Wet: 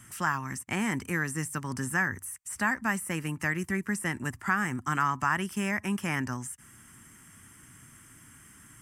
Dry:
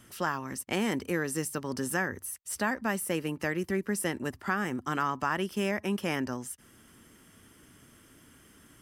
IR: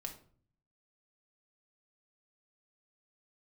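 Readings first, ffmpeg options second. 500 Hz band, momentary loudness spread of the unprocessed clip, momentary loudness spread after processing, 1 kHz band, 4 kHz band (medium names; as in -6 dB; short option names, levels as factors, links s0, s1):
-6.5 dB, 5 LU, 6 LU, +2.5 dB, -3.0 dB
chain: -filter_complex "[0:a]equalizer=f=125:t=o:w=1:g=7,equalizer=f=500:t=o:w=1:g=-11,equalizer=f=1000:t=o:w=1:g=4,equalizer=f=2000:t=o:w=1:g=6,equalizer=f=4000:t=o:w=1:g=-8,equalizer=f=8000:t=o:w=1:g=11,acrossover=split=2500[s0][s1];[s1]acompressor=threshold=0.0178:ratio=4:attack=1:release=60[s2];[s0][s2]amix=inputs=2:normalize=0"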